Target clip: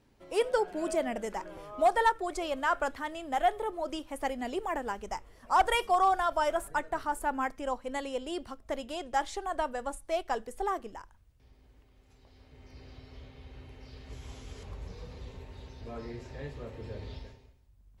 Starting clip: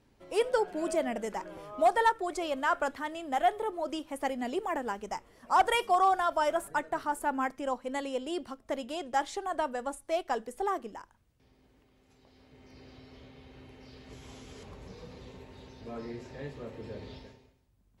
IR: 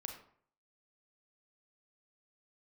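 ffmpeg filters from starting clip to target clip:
-af "asubboost=boost=4:cutoff=89"

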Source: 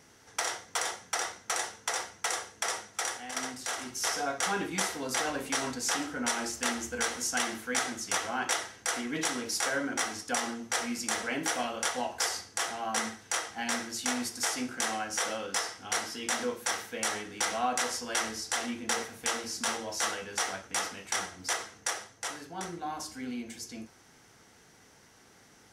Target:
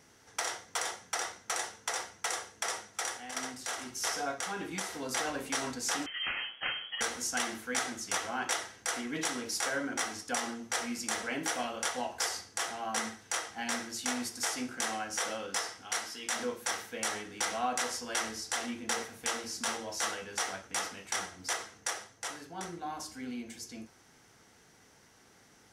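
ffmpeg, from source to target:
ffmpeg -i in.wav -filter_complex "[0:a]asplit=3[link_01][link_02][link_03];[link_01]afade=type=out:start_time=4.34:duration=0.02[link_04];[link_02]acompressor=threshold=-31dB:ratio=4,afade=type=in:start_time=4.34:duration=0.02,afade=type=out:start_time=4.93:duration=0.02[link_05];[link_03]afade=type=in:start_time=4.93:duration=0.02[link_06];[link_04][link_05][link_06]amix=inputs=3:normalize=0,asettb=1/sr,asplit=3[link_07][link_08][link_09];[link_07]atrim=end=6.064[link_10];[link_08]atrim=start=6.06:end=7.01,asetpts=PTS-STARTPTS,afade=type=in:duration=0.004:curve=qsin,afade=type=out:start_time=0.946:duration=0.004:curve=qsin,lowpass=frequency=2900:width_type=q:width=0.5098,lowpass=frequency=2900:width_type=q:width=0.6013,lowpass=frequency=2900:width_type=q:width=0.9,lowpass=frequency=2900:width_type=q:width=2.563,afreqshift=-3400[link_11];[link_09]atrim=start=7.006[link_12];[link_10][link_11]acrossfade=duration=0.004:curve1=hsin:curve2=qsin[link_13];[link_13][link_12]acrossfade=duration=0.004:curve1=qsin:curve2=hsin,asettb=1/sr,asplit=3[link_14][link_15][link_16];[link_14]atrim=end=15.824[link_17];[link_15]atrim=start=15.82:end=16.36,asetpts=PTS-STARTPTS,afade=type=in:duration=0.004:curve=qsin,afade=type=out:start_time=0.536:duration=0.004:curve=qsin,lowshelf=frequency=490:gain=-8[link_18];[link_16]atrim=start=16.356[link_19];[link_17][link_18]acrossfade=duration=0.004:curve1=hsin:curve2=qsin[link_20];[link_20][link_19]acrossfade=duration=0.004:curve1=qsin:curve2=hsin,volume=-2.5dB" out.wav

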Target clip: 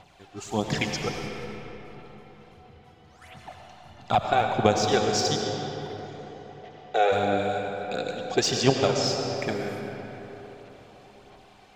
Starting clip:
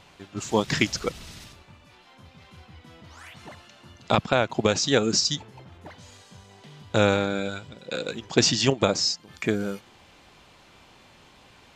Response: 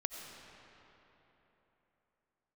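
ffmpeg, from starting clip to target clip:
-filter_complex "[0:a]equalizer=frequency=740:width_type=o:width=0.27:gain=11,asettb=1/sr,asplit=3[link_01][link_02][link_03];[link_01]atrim=end=1.264[link_04];[link_02]atrim=start=1.26:end=3.22,asetpts=PTS-STARTPTS,afade=type=in:duration=0.004:curve=qsin,afade=type=out:start_time=1.956:duration=0.004:curve=qsin,acompressor=threshold=-49dB:ratio=6[link_05];[link_03]atrim=start=3.216[link_06];[link_04][link_05]acrossfade=duration=0.004:curve1=hsin:curve2=qsin[link_07];[link_07][link_06]acrossfade=duration=0.004:curve1=qsin:curve2=hsin,aphaser=in_gain=1:out_gain=1:delay=2.7:decay=0.56:speed=1.5:type=sinusoidal,asplit=3[link_08][link_09][link_10];[link_08]afade=type=out:start_time=5.99:duration=0.02[link_11];[link_09]highpass=frequency=450:width=0.5412,highpass=frequency=450:width=1.3066,equalizer=frequency=450:width_type=q:width=4:gain=10,equalizer=frequency=690:width_type=q:width=4:gain=6,equalizer=frequency=1000:width_type=q:width=4:gain=-7,equalizer=frequency=1900:width_type=q:width=4:gain=4,equalizer=frequency=4300:width_type=q:width=4:gain=-4,lowpass=frequency=5900:width=0.5412,lowpass=frequency=5900:width=1.3066,afade=type=in:start_time=5.99:duration=0.02,afade=type=out:start_time=7.11:duration=0.02[link_12];[link_10]afade=type=in:start_time=7.11:duration=0.02[link_13];[link_11][link_12][link_13]amix=inputs=3:normalize=0[link_14];[1:a]atrim=start_sample=2205,asetrate=41013,aresample=44100[link_15];[link_14][link_15]afir=irnorm=-1:irlink=0,volume=-5.5dB"

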